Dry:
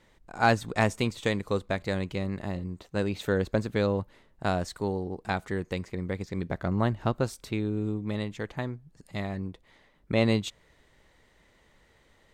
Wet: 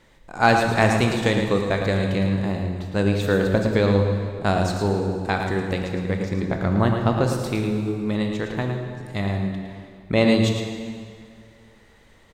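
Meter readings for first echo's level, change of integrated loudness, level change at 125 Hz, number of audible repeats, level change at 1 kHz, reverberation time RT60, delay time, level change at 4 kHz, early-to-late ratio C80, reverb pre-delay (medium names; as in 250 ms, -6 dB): -7.5 dB, +8.0 dB, +8.5 dB, 1, +7.5 dB, 2.1 s, 110 ms, +7.5 dB, 3.5 dB, 16 ms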